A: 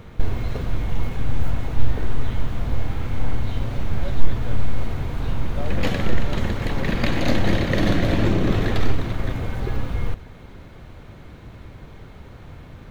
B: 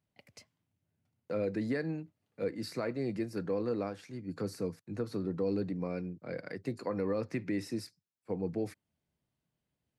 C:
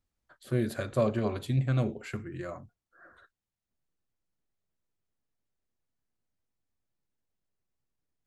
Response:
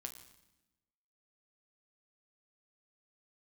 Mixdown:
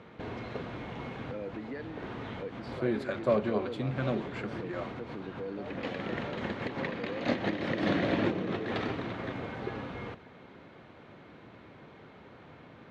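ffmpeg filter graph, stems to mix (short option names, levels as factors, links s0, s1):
-filter_complex "[0:a]volume=0.596[s0];[1:a]volume=0.501,asplit=2[s1][s2];[2:a]adelay=2300,volume=1.12[s3];[s2]apad=whole_len=569139[s4];[s0][s4]sidechaincompress=threshold=0.00501:ratio=4:attack=25:release=111[s5];[s5][s1][s3]amix=inputs=3:normalize=0,highpass=210,lowpass=3500"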